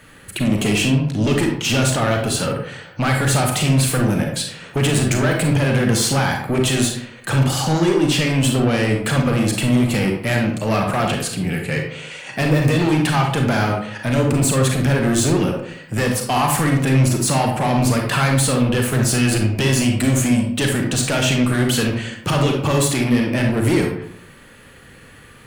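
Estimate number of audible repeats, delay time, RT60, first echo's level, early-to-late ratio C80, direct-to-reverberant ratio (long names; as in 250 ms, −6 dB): no echo audible, no echo audible, 0.65 s, no echo audible, 7.5 dB, 1.5 dB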